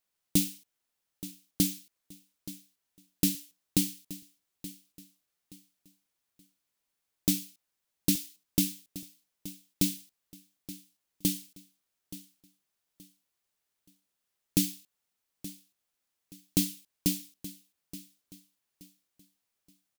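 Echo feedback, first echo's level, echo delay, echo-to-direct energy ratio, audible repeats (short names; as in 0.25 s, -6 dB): 31%, -16.0 dB, 0.875 s, -15.5 dB, 2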